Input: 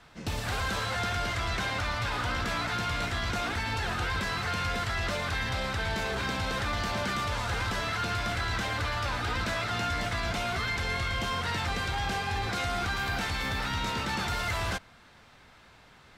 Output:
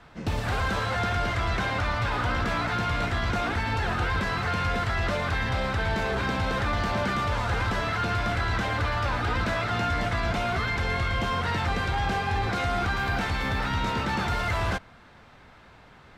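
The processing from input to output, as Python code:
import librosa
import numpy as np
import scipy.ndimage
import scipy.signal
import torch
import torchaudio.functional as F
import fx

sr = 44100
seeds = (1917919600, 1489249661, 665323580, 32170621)

y = fx.high_shelf(x, sr, hz=3000.0, db=-11.0)
y = y * 10.0 ** (5.5 / 20.0)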